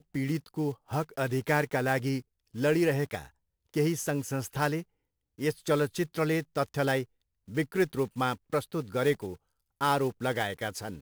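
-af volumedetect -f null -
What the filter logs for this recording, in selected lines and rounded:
mean_volume: -30.5 dB
max_volume: -12.3 dB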